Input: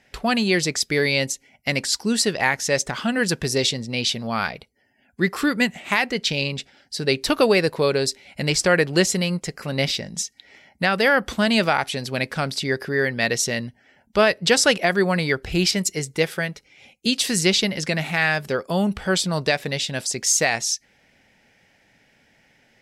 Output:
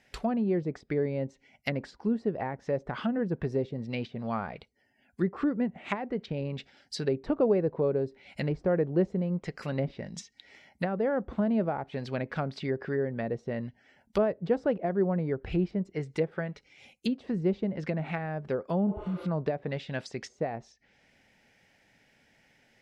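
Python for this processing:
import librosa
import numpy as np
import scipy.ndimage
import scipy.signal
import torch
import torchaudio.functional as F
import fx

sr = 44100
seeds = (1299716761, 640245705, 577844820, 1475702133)

y = fx.spec_repair(x, sr, seeds[0], start_s=18.91, length_s=0.32, low_hz=310.0, high_hz=10000.0, source='both')
y = fx.env_lowpass_down(y, sr, base_hz=620.0, full_db=-18.5)
y = F.gain(torch.from_numpy(y), -5.5).numpy()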